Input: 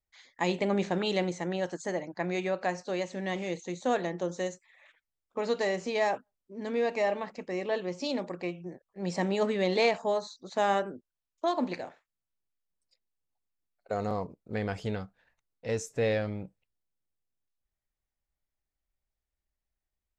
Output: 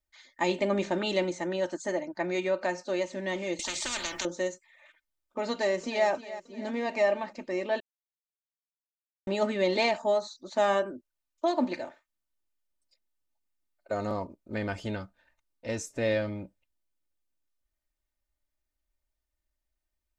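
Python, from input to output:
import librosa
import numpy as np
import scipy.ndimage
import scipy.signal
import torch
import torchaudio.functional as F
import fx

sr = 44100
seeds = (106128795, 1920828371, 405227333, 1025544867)

y = fx.spectral_comp(x, sr, ratio=10.0, at=(3.59, 4.25))
y = fx.echo_throw(y, sr, start_s=5.52, length_s=0.56, ms=310, feedback_pct=55, wet_db=-14.5)
y = fx.edit(y, sr, fx.silence(start_s=7.8, length_s=1.47), tone=tone)
y = y + 0.63 * np.pad(y, (int(3.3 * sr / 1000.0), 0))[:len(y)]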